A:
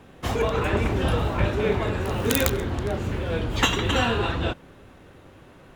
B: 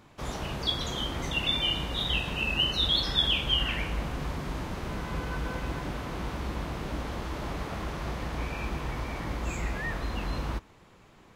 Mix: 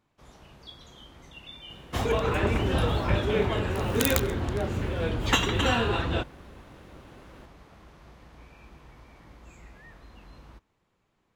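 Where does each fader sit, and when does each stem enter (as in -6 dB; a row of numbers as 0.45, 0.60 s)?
-2.0, -17.5 dB; 1.70, 0.00 s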